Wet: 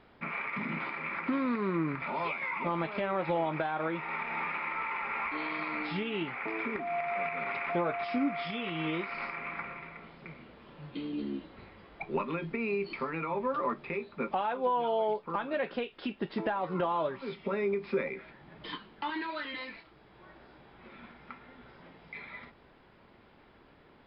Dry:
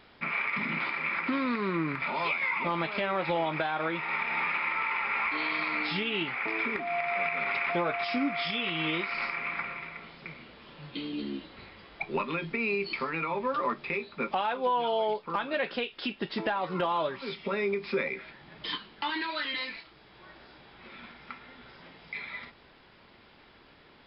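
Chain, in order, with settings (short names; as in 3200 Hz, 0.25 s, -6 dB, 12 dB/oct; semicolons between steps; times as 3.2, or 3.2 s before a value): LPF 1200 Hz 6 dB/oct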